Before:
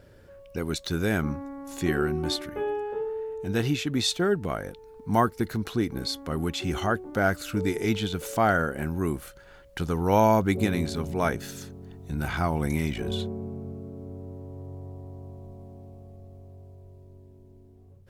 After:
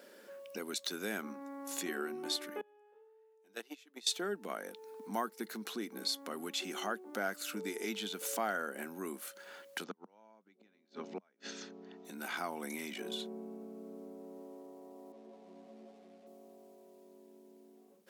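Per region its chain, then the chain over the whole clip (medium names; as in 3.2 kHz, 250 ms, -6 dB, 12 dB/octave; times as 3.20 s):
2.61–4.07 s: gate -22 dBFS, range -29 dB + high-pass 320 Hz
9.84–12.05 s: steep low-pass 6.3 kHz + tone controls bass 0 dB, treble -7 dB + inverted gate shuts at -18 dBFS, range -41 dB
15.12–16.27 s: zero-crossing glitches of -44 dBFS + Bessel low-pass 2.4 kHz + three-phase chorus
whole clip: compression 2:1, threshold -42 dBFS; elliptic high-pass 200 Hz, stop band 40 dB; tilt EQ +2 dB/octave; trim +1 dB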